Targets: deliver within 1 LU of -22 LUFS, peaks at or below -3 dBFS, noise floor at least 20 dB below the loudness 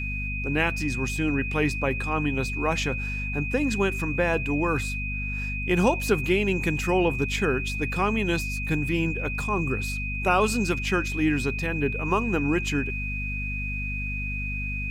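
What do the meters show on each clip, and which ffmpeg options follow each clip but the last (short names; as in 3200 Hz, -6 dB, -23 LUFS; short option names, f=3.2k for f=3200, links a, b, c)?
hum 50 Hz; harmonics up to 250 Hz; hum level -29 dBFS; steady tone 2500 Hz; tone level -31 dBFS; loudness -26.0 LUFS; peak -8.0 dBFS; loudness target -22.0 LUFS
-> -af "bandreject=f=50:t=h:w=4,bandreject=f=100:t=h:w=4,bandreject=f=150:t=h:w=4,bandreject=f=200:t=h:w=4,bandreject=f=250:t=h:w=4"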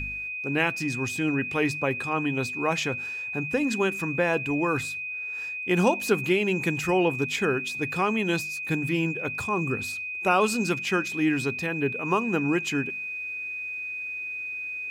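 hum none; steady tone 2500 Hz; tone level -31 dBFS
-> -af "bandreject=f=2.5k:w=30"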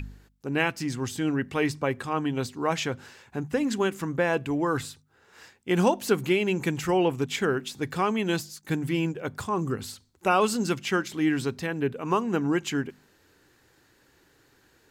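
steady tone none; loudness -27.5 LUFS; peak -9.0 dBFS; loudness target -22.0 LUFS
-> -af "volume=5.5dB"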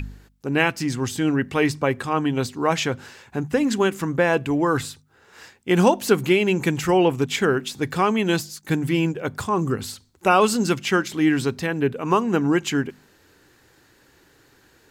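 loudness -22.0 LUFS; peak -3.5 dBFS; noise floor -58 dBFS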